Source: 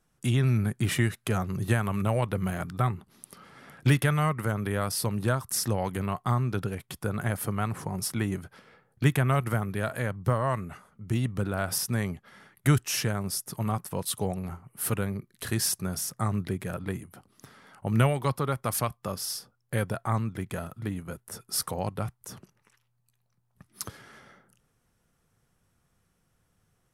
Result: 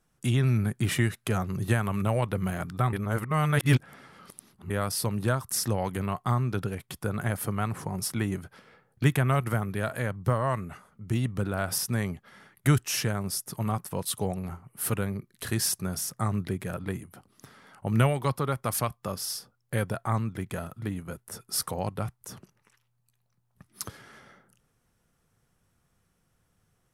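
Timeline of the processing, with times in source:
2.93–4.70 s: reverse

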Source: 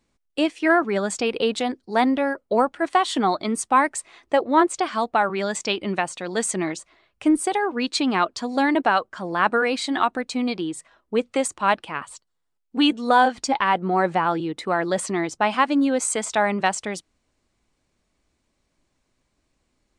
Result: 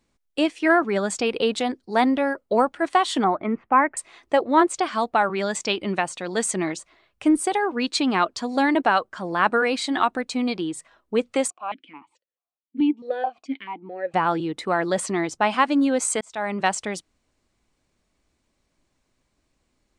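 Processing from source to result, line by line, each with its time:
3.24–3.97 s: steep low-pass 2.4 kHz
11.50–14.14 s: stepped vowel filter 4.6 Hz
16.21–16.69 s: fade in

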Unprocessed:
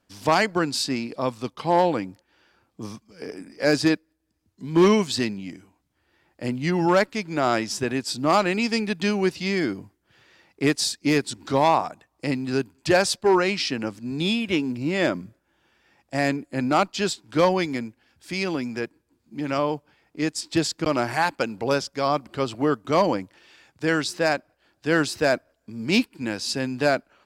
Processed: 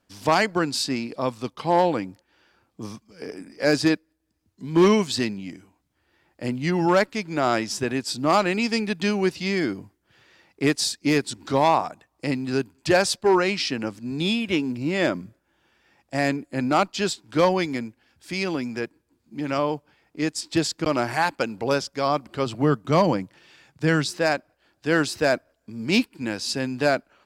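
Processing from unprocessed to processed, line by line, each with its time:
22.46–24.10 s: peaking EQ 150 Hz +9 dB

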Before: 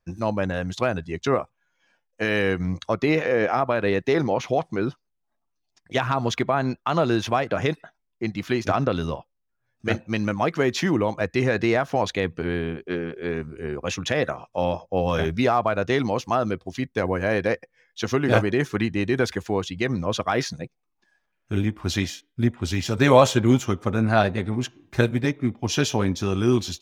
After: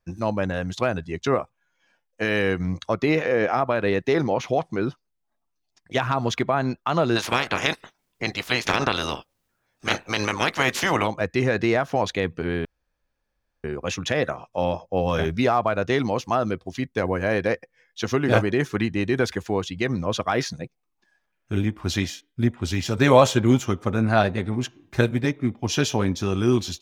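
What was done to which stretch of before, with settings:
7.15–11.06 s: spectral peaks clipped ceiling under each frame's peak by 24 dB
12.65–13.64 s: room tone

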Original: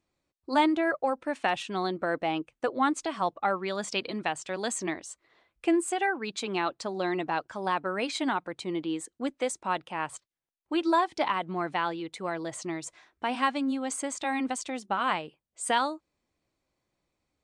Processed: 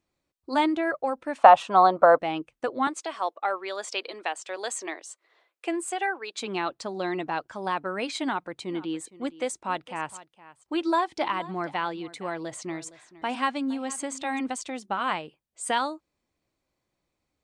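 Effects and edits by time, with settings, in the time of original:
1.38–2.19 s: high-order bell 830 Hz +16 dB
2.87–6.39 s: high-pass 380 Hz 24 dB/octave
8.23–14.39 s: delay 464 ms -18 dB

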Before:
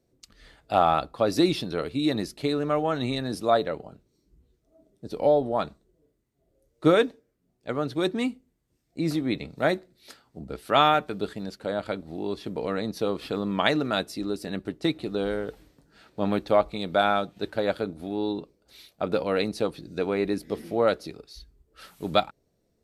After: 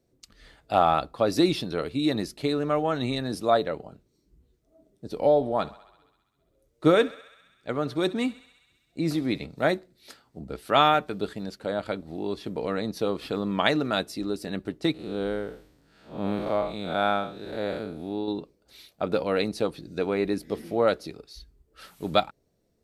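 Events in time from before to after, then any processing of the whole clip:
5.22–9.45 s: thinning echo 66 ms, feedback 77%, high-pass 550 Hz, level -18.5 dB
14.94–18.28 s: spectral blur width 158 ms

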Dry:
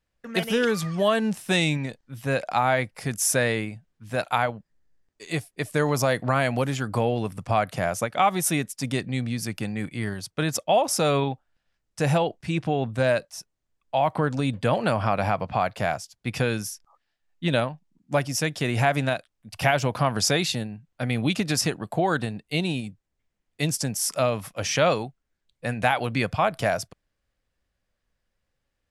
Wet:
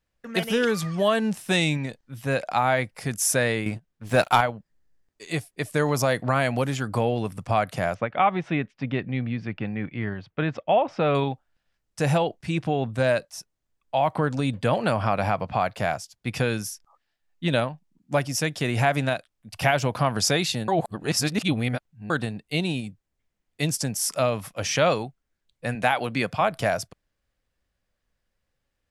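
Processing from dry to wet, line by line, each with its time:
3.66–4.41 s: waveshaping leveller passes 2
7.94–11.15 s: low-pass 2.9 kHz 24 dB/octave
20.68–22.10 s: reverse
25.75–26.41 s: high-pass 140 Hz

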